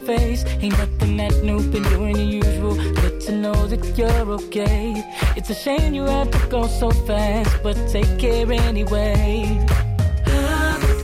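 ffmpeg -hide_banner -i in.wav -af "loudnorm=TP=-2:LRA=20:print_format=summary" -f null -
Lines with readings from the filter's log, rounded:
Input Integrated:    -20.1 LUFS
Input True Peak:      -5.2 dBTP
Input LRA:             1.6 LU
Input Threshold:     -30.1 LUFS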